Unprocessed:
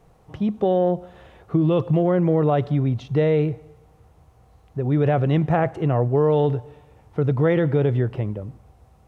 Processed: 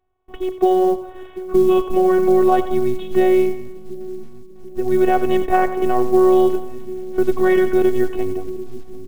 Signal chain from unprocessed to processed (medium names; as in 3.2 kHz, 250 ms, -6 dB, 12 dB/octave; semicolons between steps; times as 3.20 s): gate with hold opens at -44 dBFS; robot voice 372 Hz; on a send: two-band feedback delay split 370 Hz, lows 741 ms, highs 90 ms, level -11.5 dB; on the sum: resampled via 8 kHz; short-mantissa float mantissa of 4-bit; trim +7 dB